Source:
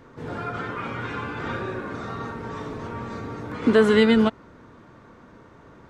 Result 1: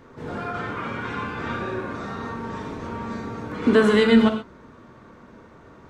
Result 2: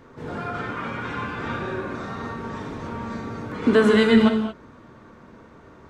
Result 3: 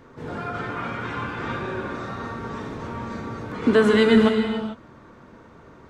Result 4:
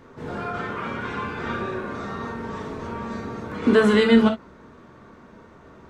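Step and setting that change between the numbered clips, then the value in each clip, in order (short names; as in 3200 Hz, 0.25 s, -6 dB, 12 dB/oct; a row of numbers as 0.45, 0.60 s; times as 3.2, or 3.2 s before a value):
non-linear reverb, gate: 150, 250, 470, 80 ms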